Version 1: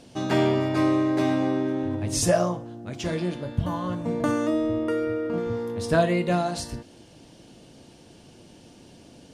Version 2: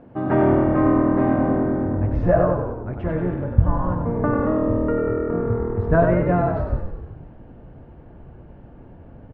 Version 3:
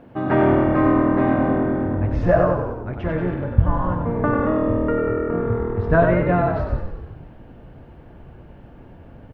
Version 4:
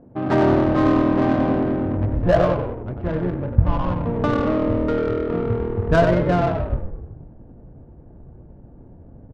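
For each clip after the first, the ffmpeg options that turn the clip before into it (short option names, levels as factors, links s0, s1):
-filter_complex "[0:a]lowpass=f=1600:w=0.5412,lowpass=f=1600:w=1.3066,asubboost=boost=5:cutoff=100,asplit=2[s0][s1];[s1]asplit=8[s2][s3][s4][s5][s6][s7][s8][s9];[s2]adelay=94,afreqshift=-40,volume=0.562[s10];[s3]adelay=188,afreqshift=-80,volume=0.331[s11];[s4]adelay=282,afreqshift=-120,volume=0.195[s12];[s5]adelay=376,afreqshift=-160,volume=0.116[s13];[s6]adelay=470,afreqshift=-200,volume=0.0684[s14];[s7]adelay=564,afreqshift=-240,volume=0.0403[s15];[s8]adelay=658,afreqshift=-280,volume=0.0237[s16];[s9]adelay=752,afreqshift=-320,volume=0.014[s17];[s10][s11][s12][s13][s14][s15][s16][s17]amix=inputs=8:normalize=0[s18];[s0][s18]amix=inputs=2:normalize=0,volume=1.58"
-af "highshelf=f=2100:g=12"
-af "adynamicsmooth=sensitivity=1:basefreq=590"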